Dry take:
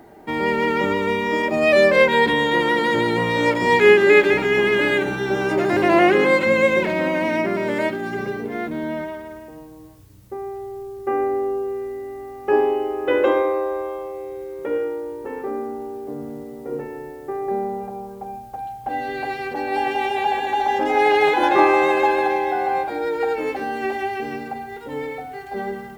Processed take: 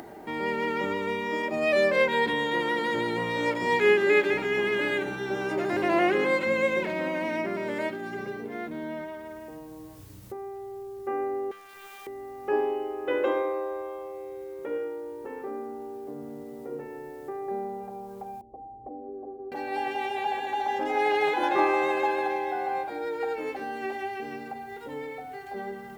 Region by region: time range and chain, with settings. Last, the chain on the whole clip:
0:11.51–0:12.07: Butterworth high-pass 840 Hz + high-shelf EQ 6,500 Hz +9 dB + highs frequency-modulated by the lows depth 0.72 ms
0:18.41–0:19.52: Chebyshev low-pass with heavy ripple 1,100 Hz, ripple 3 dB + phaser with its sweep stopped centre 380 Hz, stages 4
whole clip: low-shelf EQ 110 Hz −6.5 dB; upward compression, threshold −26 dBFS; level −8 dB

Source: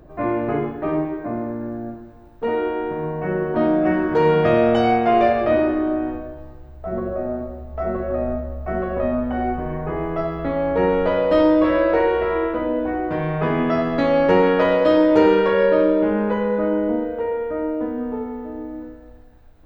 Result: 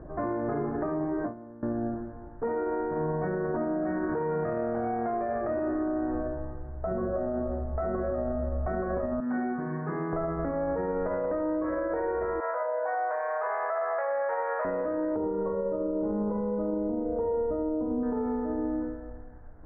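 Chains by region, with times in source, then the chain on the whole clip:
0:01.00–0:01.63: noise gate with hold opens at −17 dBFS, closes at −25 dBFS + notch filter 2,600 Hz, Q 5.3
0:09.20–0:10.13: high-pass filter 170 Hz 24 dB per octave + parametric band 600 Hz −15 dB 1.6 octaves
0:12.40–0:14.65: Butterworth high-pass 540 Hz 48 dB per octave + saturating transformer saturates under 880 Hz
0:15.16–0:18.03: Savitzky-Golay smoothing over 65 samples + low-shelf EQ 230 Hz +8.5 dB
whole clip: Butterworth low-pass 1,800 Hz 48 dB per octave; downward compressor, threshold −24 dBFS; brickwall limiter −24.5 dBFS; level +2 dB

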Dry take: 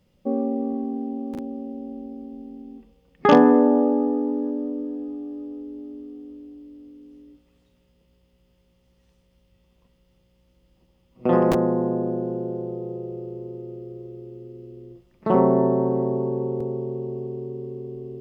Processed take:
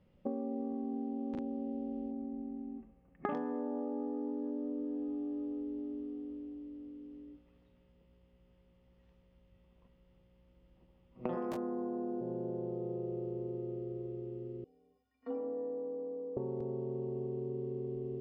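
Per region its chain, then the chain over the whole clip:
0:02.11–0:03.35: low-pass filter 2,200 Hz 24 dB per octave + notch comb filter 480 Hz
0:11.35–0:12.21: high-pass filter 51 Hz + parametric band 74 Hz −5.5 dB 2.2 octaves + double-tracking delay 20 ms −3 dB
0:14.64–0:16.37: stiff-string resonator 210 Hz, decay 0.57 s, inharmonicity 0.03 + frequency shifter +50 Hz + one half of a high-frequency compander encoder only
whole clip: low-pass that shuts in the quiet parts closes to 2,400 Hz, open at −14.5 dBFS; downward compressor 12 to 1, threshold −31 dBFS; level −3 dB

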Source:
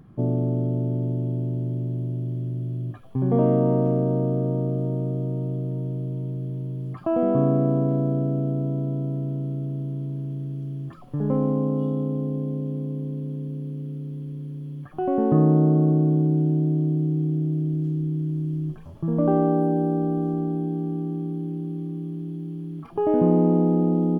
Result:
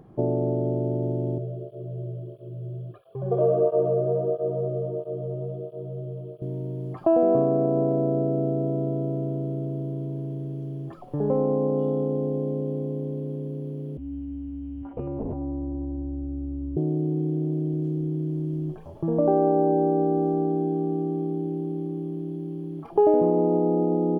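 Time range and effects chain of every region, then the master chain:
0:01.38–0:06.42: phaser with its sweep stopped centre 1,300 Hz, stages 8 + through-zero flanger with one copy inverted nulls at 1.5 Hz, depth 4.5 ms
0:13.97–0:16.77: one-pitch LPC vocoder at 8 kHz 210 Hz + downward compressor 5 to 1, threshold −27 dBFS + frequency shifter −280 Hz
whole clip: downward compressor, threshold −21 dBFS; flat-topped bell 550 Hz +10 dB; level −2.5 dB

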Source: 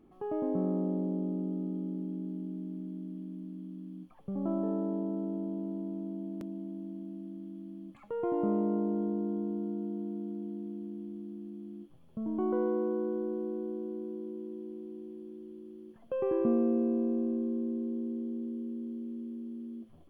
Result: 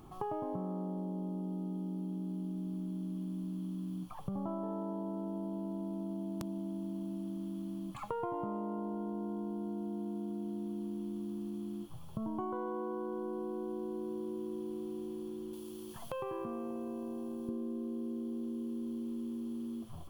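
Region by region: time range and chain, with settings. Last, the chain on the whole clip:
0:15.53–0:17.49: high-shelf EQ 2,400 Hz +11.5 dB + downward compressor 2.5 to 1, threshold −46 dBFS
whole clip: octave-band graphic EQ 125/250/500/1,000/2,000 Hz +6/−10/−7/+7/−10 dB; downward compressor 10 to 1, threshold −47 dBFS; high-shelf EQ 2,100 Hz +8 dB; level +11.5 dB

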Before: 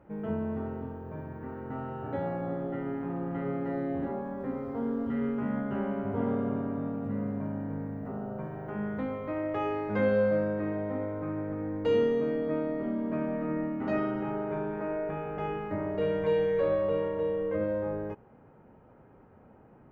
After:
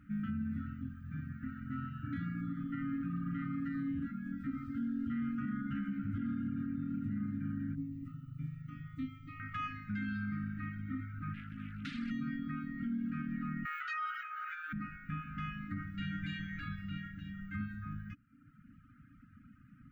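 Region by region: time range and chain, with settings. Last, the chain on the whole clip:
0:07.75–0:09.40: phaser with its sweep stopped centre 310 Hz, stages 8 + double-tracking delay 25 ms −10.5 dB
0:11.34–0:12.11: high-pass filter 120 Hz 6 dB per octave + downward compressor 16 to 1, threshold −27 dBFS + highs frequency-modulated by the lows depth 0.57 ms
0:13.65–0:14.73: linear-phase brick-wall high-pass 660 Hz + envelope flattener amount 100%
whole clip: brick-wall band-stop 300–1,200 Hz; reverb reduction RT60 0.98 s; brickwall limiter −32.5 dBFS; level +2.5 dB

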